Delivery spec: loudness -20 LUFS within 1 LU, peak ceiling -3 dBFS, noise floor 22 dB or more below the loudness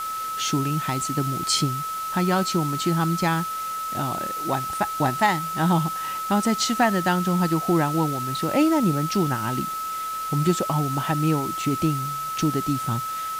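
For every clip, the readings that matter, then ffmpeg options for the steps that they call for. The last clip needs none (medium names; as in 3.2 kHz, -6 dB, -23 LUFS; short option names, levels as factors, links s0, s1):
steady tone 1.3 kHz; tone level -27 dBFS; noise floor -30 dBFS; noise floor target -46 dBFS; loudness -23.5 LUFS; peak level -7.5 dBFS; loudness target -20.0 LUFS
-> -af "bandreject=f=1300:w=30"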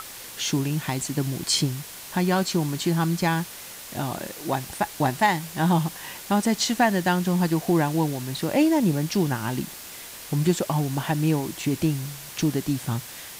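steady tone not found; noise floor -40 dBFS; noise floor target -47 dBFS
-> -af "afftdn=nr=7:nf=-40"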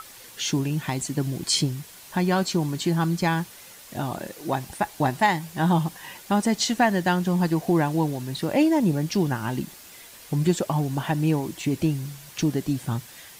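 noise floor -46 dBFS; noise floor target -47 dBFS
-> -af "afftdn=nr=6:nf=-46"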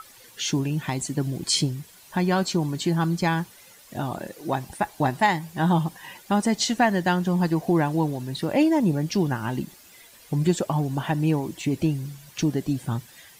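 noise floor -51 dBFS; loudness -25.0 LUFS; peak level -9.0 dBFS; loudness target -20.0 LUFS
-> -af "volume=1.78"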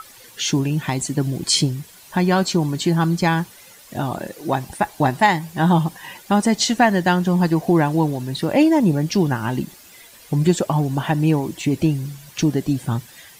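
loudness -20.0 LUFS; peak level -4.0 dBFS; noise floor -46 dBFS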